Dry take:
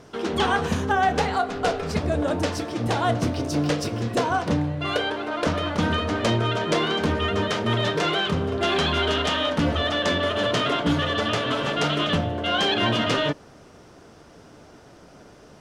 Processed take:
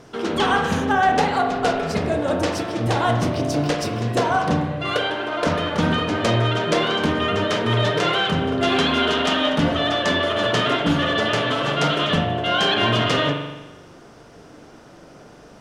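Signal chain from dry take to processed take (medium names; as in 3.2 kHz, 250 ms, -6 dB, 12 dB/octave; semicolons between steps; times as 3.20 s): peaking EQ 75 Hz -9 dB 0.27 oct; spring tank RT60 1.1 s, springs 42 ms, chirp 60 ms, DRR 3.5 dB; trim +2 dB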